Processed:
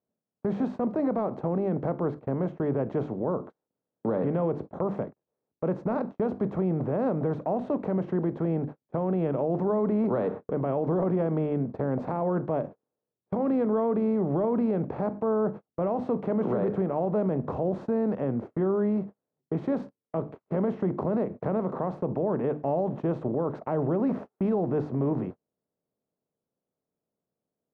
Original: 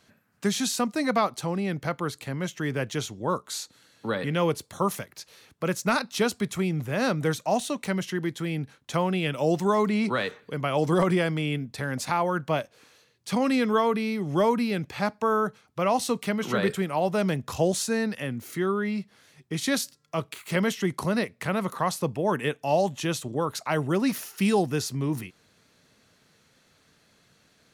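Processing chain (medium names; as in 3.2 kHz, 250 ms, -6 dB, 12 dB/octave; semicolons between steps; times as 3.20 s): spectral levelling over time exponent 0.6; Chebyshev low-pass 580 Hz, order 2; hum notches 50/100/150/200/250/300/350 Hz; gate -34 dBFS, range -42 dB; peak limiter -18.5 dBFS, peak gain reduction 8 dB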